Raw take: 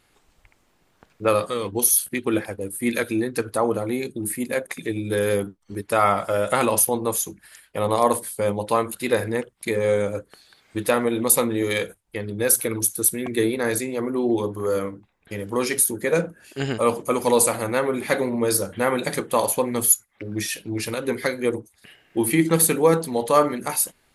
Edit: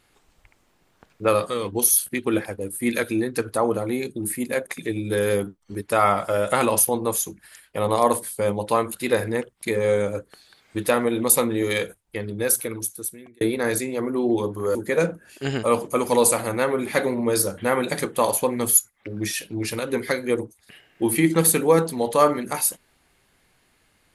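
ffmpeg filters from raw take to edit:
ffmpeg -i in.wav -filter_complex "[0:a]asplit=3[link_01][link_02][link_03];[link_01]atrim=end=13.41,asetpts=PTS-STARTPTS,afade=type=out:start_time=12.23:duration=1.18[link_04];[link_02]atrim=start=13.41:end=14.752,asetpts=PTS-STARTPTS,afade=type=in:duration=0.004:curve=hsin[link_05];[link_03]atrim=start=15.898[link_06];[link_04][link_05]concat=n=2:v=0:a=1[link_07];[link_07][link_06]acrossfade=duration=0.004:curve1=hsin:curve2=hsin" out.wav

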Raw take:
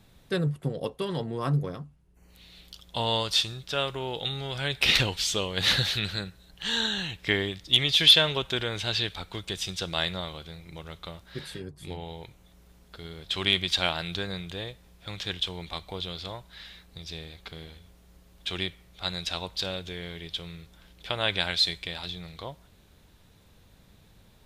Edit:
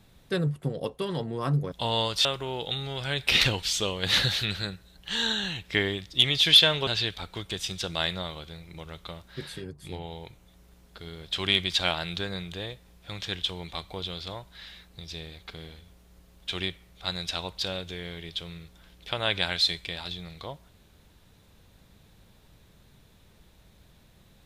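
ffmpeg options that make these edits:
ffmpeg -i in.wav -filter_complex "[0:a]asplit=4[link_01][link_02][link_03][link_04];[link_01]atrim=end=1.722[link_05];[link_02]atrim=start=2.868:end=3.402[link_06];[link_03]atrim=start=3.788:end=8.412[link_07];[link_04]atrim=start=8.848[link_08];[link_05][link_06]acrossfade=duration=0.004:curve1=hsin:curve2=hsin[link_09];[link_09][link_07]acrossfade=duration=0.004:curve1=hsin:curve2=hsin[link_10];[link_10][link_08]acrossfade=duration=0.004:curve1=hsin:curve2=hsin" out.wav

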